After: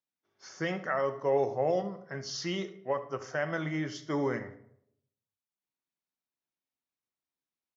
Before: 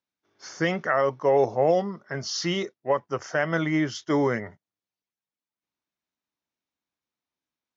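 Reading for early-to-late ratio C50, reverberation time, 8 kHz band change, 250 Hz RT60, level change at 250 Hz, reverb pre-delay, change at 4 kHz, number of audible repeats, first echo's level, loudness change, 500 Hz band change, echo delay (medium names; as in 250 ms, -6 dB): 12.5 dB, 0.70 s, no reading, 0.75 s, -8.0 dB, 5 ms, -7.5 dB, 1, -16.5 dB, -7.0 dB, -7.0 dB, 73 ms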